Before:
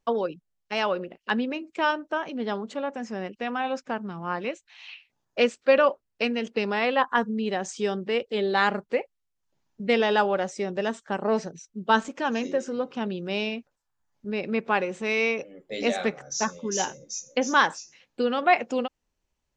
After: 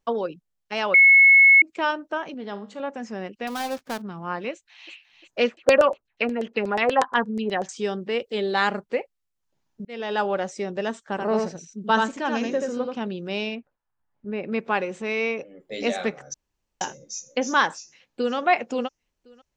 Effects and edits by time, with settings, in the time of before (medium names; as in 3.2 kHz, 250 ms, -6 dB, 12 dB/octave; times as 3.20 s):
0.94–1.62 s: bleep 2.19 kHz -9.5 dBFS
2.34–2.80 s: feedback comb 51 Hz, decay 0.42 s
3.47–4.02 s: dead-time distortion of 0.17 ms
4.52–4.92 s: echo throw 350 ms, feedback 55%, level -9.5 dB
5.45–7.69 s: LFO low-pass saw down 8.3 Hz 470–7400 Hz
8.19–8.79 s: treble shelf 6.9 kHz +8 dB
9.85–10.30 s: fade in
11.05–12.95 s: delay 82 ms -3.5 dB
13.55–14.52 s: low-pass 2.2 kHz
15.02–15.60 s: treble shelf 4 kHz -8 dB
16.34–16.81 s: room tone
17.71–18.35 s: echo throw 530 ms, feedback 25%, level -14.5 dB